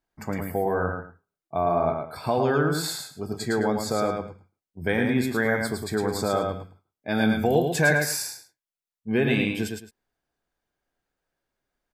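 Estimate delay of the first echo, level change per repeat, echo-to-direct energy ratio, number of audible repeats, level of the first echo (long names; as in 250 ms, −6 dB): 109 ms, −13.0 dB, −4.0 dB, 2, −4.5 dB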